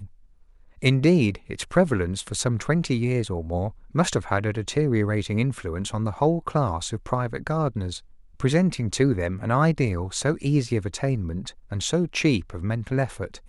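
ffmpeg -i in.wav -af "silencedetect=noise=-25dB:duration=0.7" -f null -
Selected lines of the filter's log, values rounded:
silence_start: 0.00
silence_end: 0.83 | silence_duration: 0.83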